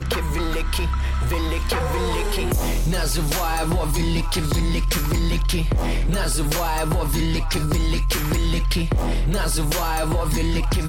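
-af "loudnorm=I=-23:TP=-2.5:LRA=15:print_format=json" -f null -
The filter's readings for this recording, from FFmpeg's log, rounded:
"input_i" : "-22.8",
"input_tp" : "-12.0",
"input_lra" : "0.5",
"input_thresh" : "-32.8",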